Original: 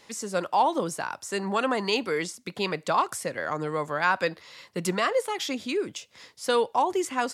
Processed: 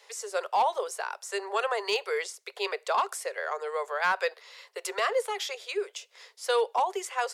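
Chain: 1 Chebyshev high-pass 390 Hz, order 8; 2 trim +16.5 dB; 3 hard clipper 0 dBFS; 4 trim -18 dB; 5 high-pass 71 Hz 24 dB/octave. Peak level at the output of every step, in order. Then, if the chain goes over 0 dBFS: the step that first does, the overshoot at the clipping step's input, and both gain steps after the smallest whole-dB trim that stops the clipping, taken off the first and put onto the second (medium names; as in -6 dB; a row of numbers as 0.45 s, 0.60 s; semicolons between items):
-12.0 dBFS, +4.5 dBFS, 0.0 dBFS, -18.0 dBFS, -16.0 dBFS; step 2, 4.5 dB; step 2 +11.5 dB, step 4 -13 dB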